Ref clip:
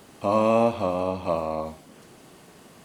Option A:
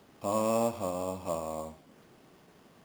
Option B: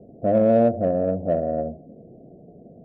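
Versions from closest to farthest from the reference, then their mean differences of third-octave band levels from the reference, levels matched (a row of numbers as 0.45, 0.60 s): A, B; 3.0, 9.5 dB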